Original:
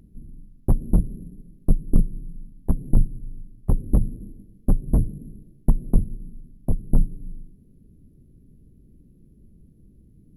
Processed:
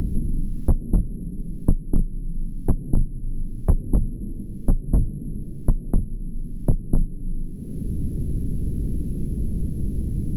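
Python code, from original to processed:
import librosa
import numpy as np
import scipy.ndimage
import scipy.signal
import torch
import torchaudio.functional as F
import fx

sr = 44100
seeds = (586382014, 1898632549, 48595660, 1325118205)

p1 = 10.0 ** (-18.5 / 20.0) * np.tanh(x / 10.0 ** (-18.5 / 20.0))
p2 = x + F.gain(torch.from_numpy(p1), -10.0).numpy()
y = fx.band_squash(p2, sr, depth_pct=100)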